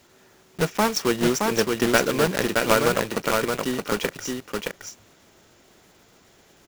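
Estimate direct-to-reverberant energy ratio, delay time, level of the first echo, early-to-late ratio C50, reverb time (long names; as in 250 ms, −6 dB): no reverb audible, 620 ms, −3.5 dB, no reverb audible, no reverb audible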